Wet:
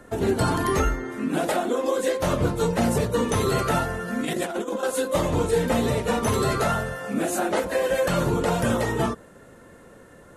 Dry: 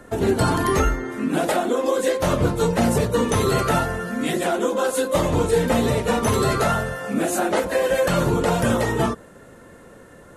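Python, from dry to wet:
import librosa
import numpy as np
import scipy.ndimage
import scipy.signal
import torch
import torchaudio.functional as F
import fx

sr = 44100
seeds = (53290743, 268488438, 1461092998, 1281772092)

y = fx.over_compress(x, sr, threshold_db=-24.0, ratio=-0.5, at=(4.08, 4.83))
y = y * 10.0 ** (-3.0 / 20.0)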